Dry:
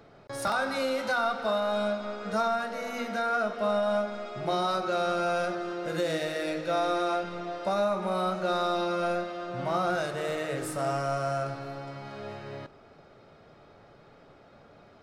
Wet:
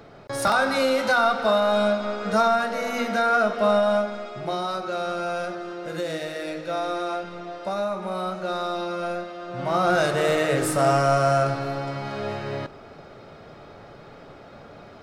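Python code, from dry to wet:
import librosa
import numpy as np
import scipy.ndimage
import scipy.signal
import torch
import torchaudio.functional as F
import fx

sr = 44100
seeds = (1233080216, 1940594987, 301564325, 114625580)

y = fx.gain(x, sr, db=fx.line((3.73, 7.5), (4.6, 0.0), (9.4, 0.0), (10.06, 10.0)))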